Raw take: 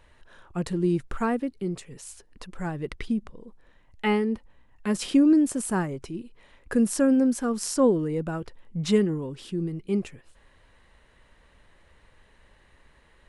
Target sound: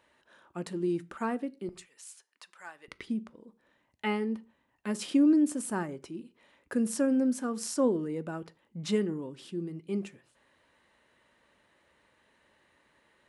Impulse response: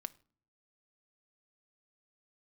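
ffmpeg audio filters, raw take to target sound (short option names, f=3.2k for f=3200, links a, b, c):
-filter_complex "[0:a]asetnsamples=n=441:p=0,asendcmd='1.69 highpass f 1100;2.88 highpass f 160',highpass=190[a];[1:a]atrim=start_sample=2205,afade=t=out:st=0.29:d=0.01,atrim=end_sample=13230,asetrate=57330,aresample=44100[b];[a][b]afir=irnorm=-1:irlink=0"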